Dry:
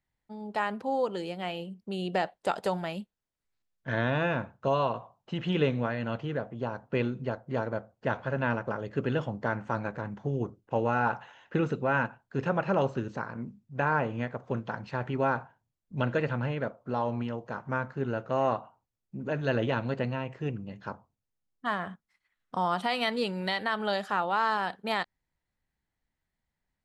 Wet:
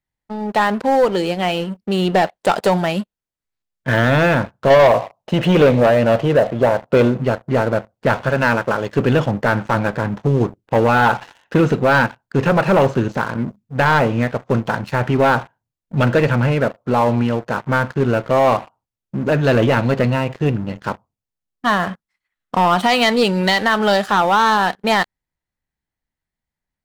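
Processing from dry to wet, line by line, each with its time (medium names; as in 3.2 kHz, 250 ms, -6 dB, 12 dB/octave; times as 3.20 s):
4.70–7.21 s: peaking EQ 600 Hz +10.5 dB
8.29–8.97 s: tilt EQ +1.5 dB/octave
whole clip: waveshaping leveller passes 3; trim +4.5 dB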